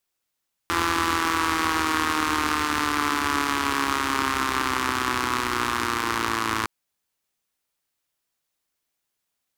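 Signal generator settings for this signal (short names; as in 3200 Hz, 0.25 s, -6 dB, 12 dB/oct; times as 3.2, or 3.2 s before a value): four-cylinder engine model, changing speed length 5.96 s, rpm 5100, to 3300, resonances 83/300/1100 Hz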